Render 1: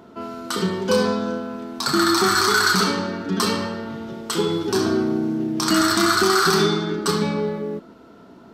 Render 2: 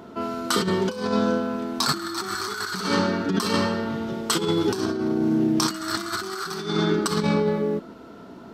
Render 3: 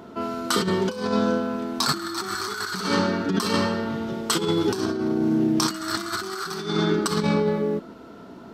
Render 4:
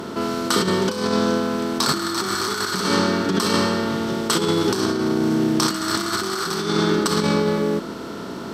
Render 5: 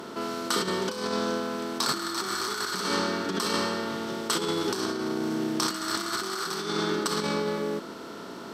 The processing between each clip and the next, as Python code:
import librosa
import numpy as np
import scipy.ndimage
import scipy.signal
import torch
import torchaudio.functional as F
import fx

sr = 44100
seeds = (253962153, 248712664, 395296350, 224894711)

y1 = fx.over_compress(x, sr, threshold_db=-23.0, ratio=-0.5)
y2 = y1
y3 = fx.bin_compress(y2, sr, power=0.6)
y4 = fx.low_shelf(y3, sr, hz=190.0, db=-11.5)
y4 = y4 * librosa.db_to_amplitude(-6.0)